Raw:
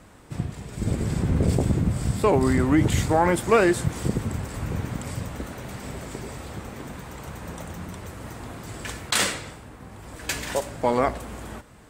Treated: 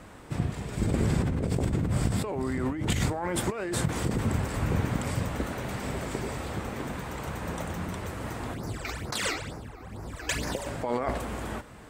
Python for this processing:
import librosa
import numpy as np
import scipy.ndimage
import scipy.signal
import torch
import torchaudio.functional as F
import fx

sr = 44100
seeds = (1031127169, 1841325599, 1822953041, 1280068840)

y = fx.bass_treble(x, sr, bass_db=-2, treble_db=-4)
y = fx.over_compress(y, sr, threshold_db=-27.0, ratio=-1.0)
y = fx.phaser_stages(y, sr, stages=12, low_hz=160.0, high_hz=3200.0, hz=2.2, feedback_pct=35, at=(8.54, 10.66))